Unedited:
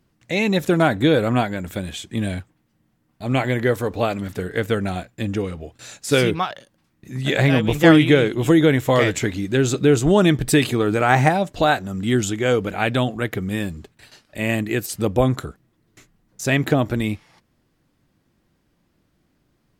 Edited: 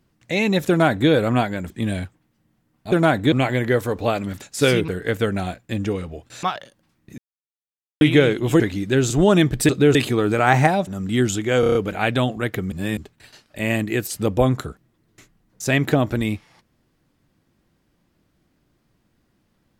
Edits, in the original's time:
0.69–1.09 copy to 3.27
1.7–2.05 cut
5.92–6.38 move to 4.37
7.13–7.96 mute
8.55–9.22 cut
9.72–9.98 move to 10.57
11.49–11.81 cut
12.54 stutter 0.03 s, 6 plays
13.51–13.76 reverse

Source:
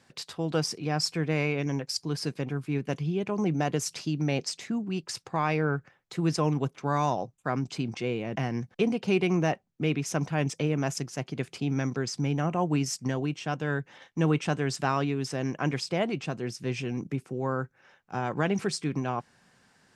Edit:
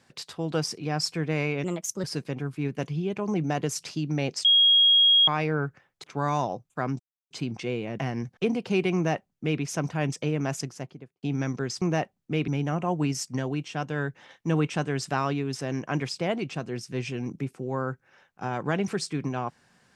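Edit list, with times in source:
1.64–2.14 speed 126%
4.55–5.38 bleep 3280 Hz -15 dBFS
6.14–6.72 cut
7.68 insert silence 0.31 s
9.32–9.98 copy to 12.19
10.96–11.6 studio fade out

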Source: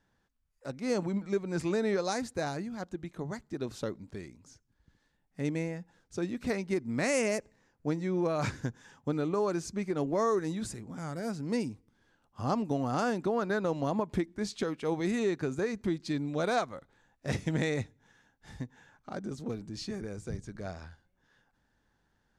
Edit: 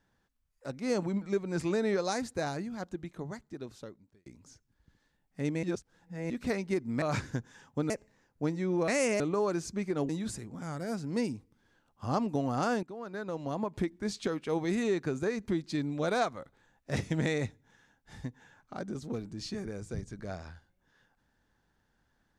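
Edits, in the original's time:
2.94–4.26 fade out
5.63–6.3 reverse
7.02–7.34 swap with 8.32–9.2
10.09–10.45 cut
13.19–14.37 fade in, from -17.5 dB

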